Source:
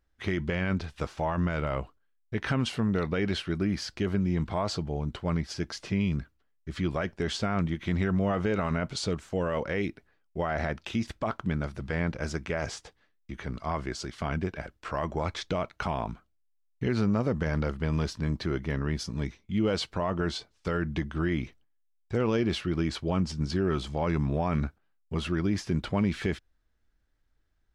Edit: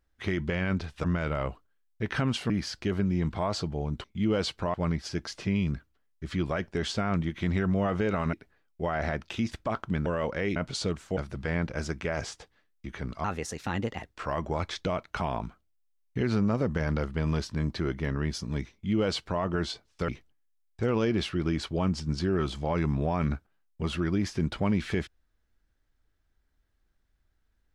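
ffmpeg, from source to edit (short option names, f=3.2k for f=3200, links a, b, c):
-filter_complex "[0:a]asplit=12[a][b][c][d][e][f][g][h][i][j][k][l];[a]atrim=end=1.042[m];[b]atrim=start=1.358:end=2.822[n];[c]atrim=start=3.648:end=5.192[o];[d]atrim=start=19.378:end=20.082[p];[e]atrim=start=5.188:end=8.782[q];[f]atrim=start=9.888:end=11.622[r];[g]atrim=start=9.388:end=9.892[s];[h]atrim=start=8.778:end=9.392[t];[i]atrim=start=11.618:end=13.694[u];[j]atrim=start=13.69:end=14.76,asetpts=PTS-STARTPTS,asetrate=54684,aresample=44100,atrim=end_sample=38054,asetpts=PTS-STARTPTS[v];[k]atrim=start=14.756:end=20.742[w];[l]atrim=start=21.398[x];[m][n]acrossfade=d=0.004:c1=hsin:c2=hsin[y];[y][o]acrossfade=d=0.004:c1=hsin:c2=hsin[z];[z][p]acrossfade=d=0.004:c1=hsin:c2=hsin[aa];[aa][q]acrossfade=d=0.004:c1=hsin:c2=hsin[ab];[ab][r]acrossfade=d=0.004:c1=hsin:c2=hsin[ac];[ac][s]acrossfade=d=0.004:c1=hsin:c2=hsin[ad];[ad][t]acrossfade=d=0.004:c1=hsin:c2=hsin[ae];[ae][u]acrossfade=d=0.004:c1=hsin:c2=hsin[af];[af][v]acrossfade=d=0.004:c1=hsin:c2=hsin[ag];[ag][w]acrossfade=d=0.004:c1=hsin:c2=hsin[ah];[ah][x]acrossfade=d=0.004:c1=hsin:c2=hsin"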